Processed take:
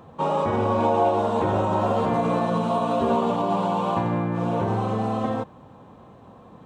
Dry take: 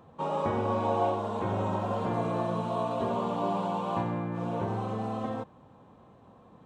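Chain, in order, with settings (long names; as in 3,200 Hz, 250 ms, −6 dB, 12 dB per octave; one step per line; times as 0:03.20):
brickwall limiter −22 dBFS, peak gain reduction 5.5 dB
0:00.77–0:03.31: double-tracking delay 13 ms −6 dB
level +8 dB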